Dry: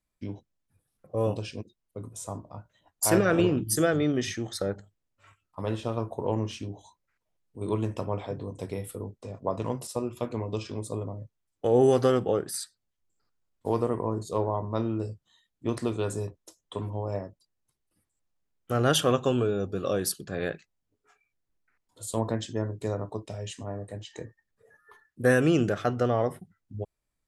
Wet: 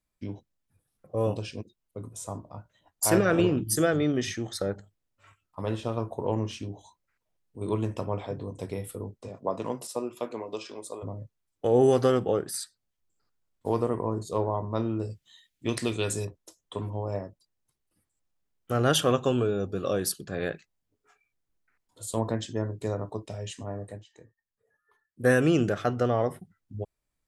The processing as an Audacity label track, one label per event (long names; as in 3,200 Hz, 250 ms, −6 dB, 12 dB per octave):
9.280000	11.020000	high-pass filter 140 Hz → 520 Hz
15.100000	16.250000	high shelf with overshoot 1,600 Hz +8 dB, Q 1.5
23.900000	25.270000	duck −13.5 dB, fades 0.15 s